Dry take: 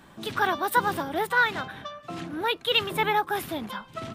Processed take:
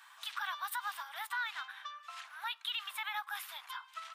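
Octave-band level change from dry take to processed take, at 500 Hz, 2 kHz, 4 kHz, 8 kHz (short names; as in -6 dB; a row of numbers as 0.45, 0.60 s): -35.5, -12.5, -10.5, -8.0 dB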